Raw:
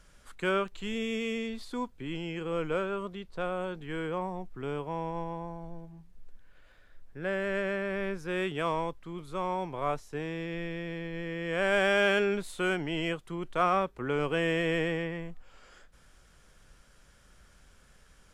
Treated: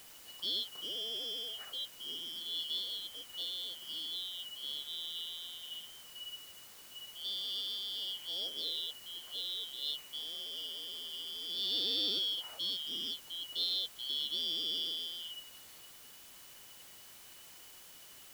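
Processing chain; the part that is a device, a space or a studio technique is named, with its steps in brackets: split-band scrambled radio (four frequency bands reordered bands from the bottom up 3412; band-pass 320–3100 Hz; white noise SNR 14 dB); trim -3.5 dB

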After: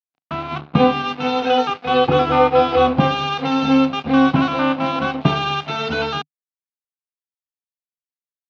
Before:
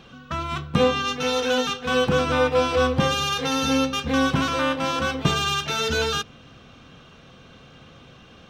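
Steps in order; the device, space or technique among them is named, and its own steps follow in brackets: 1.46–2.88 s: comb 2.4 ms, depth 69%; blown loudspeaker (crossover distortion -34 dBFS; cabinet simulation 130–3800 Hz, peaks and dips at 150 Hz +4 dB, 270 Hz +5 dB, 470 Hz -4 dB, 740 Hz +8 dB, 1.8 kHz -6 dB, 3.3 kHz -5 dB); trim +5.5 dB

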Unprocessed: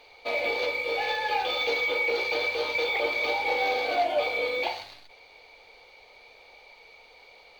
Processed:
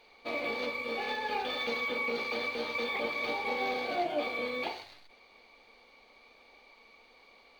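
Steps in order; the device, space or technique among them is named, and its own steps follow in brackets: octave pedal (harmony voices -12 st -8 dB); trim -7 dB

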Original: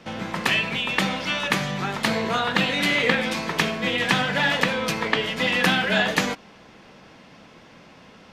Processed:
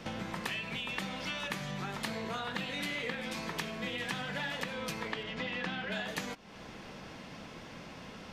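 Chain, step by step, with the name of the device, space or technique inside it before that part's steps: 5.23–5.92 s: distance through air 130 m; ASMR close-microphone chain (bass shelf 110 Hz +6 dB; compression 4:1, threshold -38 dBFS, peak gain reduction 19 dB; treble shelf 7 kHz +5 dB)

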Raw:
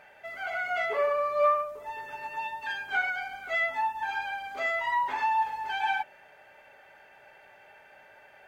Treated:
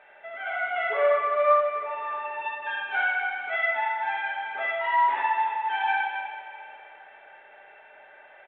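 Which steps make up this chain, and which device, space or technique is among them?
1.81–2.33 s: hum notches 50/100/150/200/250 Hz; loudspeakers at several distances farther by 22 m -1 dB, 97 m -8 dB; plate-style reverb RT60 3.1 s, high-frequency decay 1×, DRR 6 dB; dynamic bell 5.5 kHz, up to +6 dB, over -54 dBFS, Q 1.7; telephone (band-pass 360–3100 Hz; A-law 64 kbps 8 kHz)

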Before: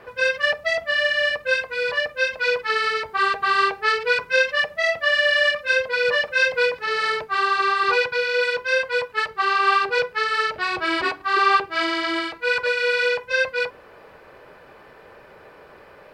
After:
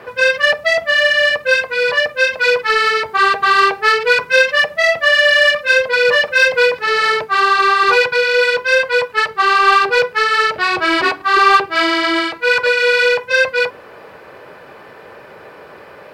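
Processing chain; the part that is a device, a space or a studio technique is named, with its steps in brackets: high-pass 92 Hz; parallel distortion (in parallel at -7 dB: hard clipper -21 dBFS, distortion -9 dB); on the sum: trim +5.5 dB

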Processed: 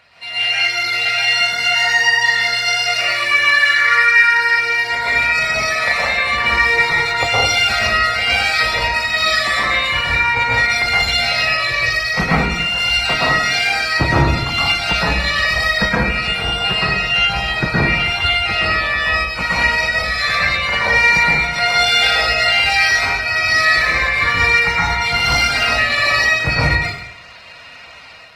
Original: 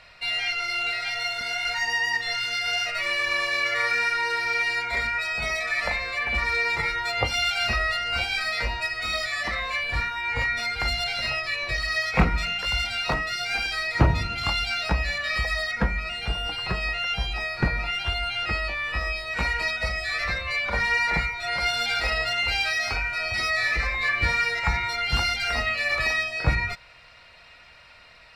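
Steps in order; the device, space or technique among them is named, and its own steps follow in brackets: 3.32–4.47 s: fifteen-band graphic EQ 250 Hz -5 dB, 630 Hz -9 dB, 1.6 kHz +11 dB; far-field microphone of a smart speaker (reverberation RT60 0.75 s, pre-delay 112 ms, DRR -6.5 dB; high-pass 89 Hz 12 dB/octave; level rider gain up to 5 dB; Opus 20 kbps 48 kHz)

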